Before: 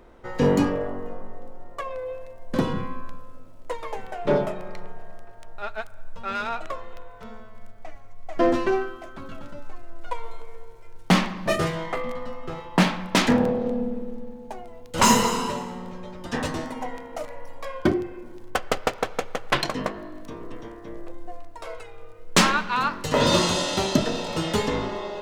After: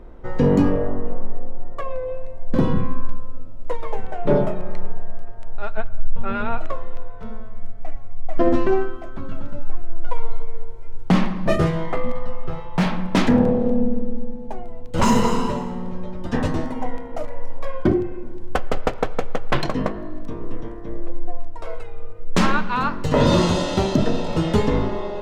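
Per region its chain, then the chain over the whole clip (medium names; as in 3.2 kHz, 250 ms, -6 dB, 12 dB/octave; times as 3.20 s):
5.77–6.58 s: low-pass 3.6 kHz 24 dB/octave + bass shelf 430 Hz +5 dB
12.12–12.92 s: peaking EQ 280 Hz -9.5 dB 0.84 oct + band-stop 7.2 kHz, Q 9.7 + overload inside the chain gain 20 dB
whole clip: tilt EQ -2.5 dB/octave; loudness maximiser +7 dB; trim -5.5 dB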